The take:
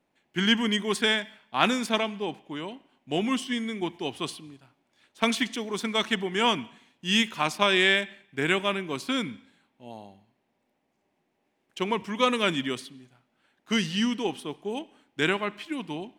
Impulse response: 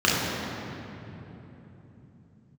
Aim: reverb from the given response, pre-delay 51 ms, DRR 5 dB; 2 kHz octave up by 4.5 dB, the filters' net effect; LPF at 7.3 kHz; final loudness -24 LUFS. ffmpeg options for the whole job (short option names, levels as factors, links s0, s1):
-filter_complex "[0:a]lowpass=7300,equalizer=f=2000:t=o:g=5.5,asplit=2[s0][s1];[1:a]atrim=start_sample=2205,adelay=51[s2];[s1][s2]afir=irnorm=-1:irlink=0,volume=0.0596[s3];[s0][s3]amix=inputs=2:normalize=0,volume=0.944"